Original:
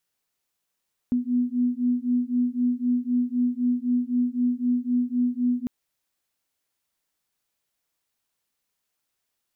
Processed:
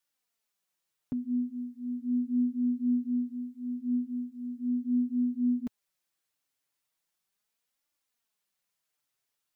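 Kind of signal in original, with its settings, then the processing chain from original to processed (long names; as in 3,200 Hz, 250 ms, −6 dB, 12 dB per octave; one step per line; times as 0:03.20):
two tones that beat 244 Hz, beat 3.9 Hz, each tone −24 dBFS 4.55 s
low-shelf EQ 370 Hz −6.5 dB
flanger 0.38 Hz, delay 3.3 ms, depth 4.1 ms, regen +5%
parametric band 110 Hz +5.5 dB 1.1 octaves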